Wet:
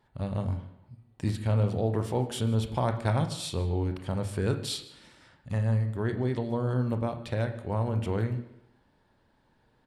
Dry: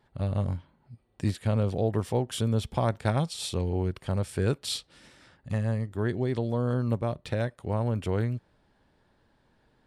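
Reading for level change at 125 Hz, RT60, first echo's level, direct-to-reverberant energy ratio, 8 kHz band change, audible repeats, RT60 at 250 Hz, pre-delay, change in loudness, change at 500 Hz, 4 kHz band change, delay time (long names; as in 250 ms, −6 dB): 0.0 dB, 0.80 s, −22.0 dB, 6.5 dB, −2.0 dB, 1, 0.80 s, 23 ms, −0.5 dB, −1.5 dB, −1.5 dB, 155 ms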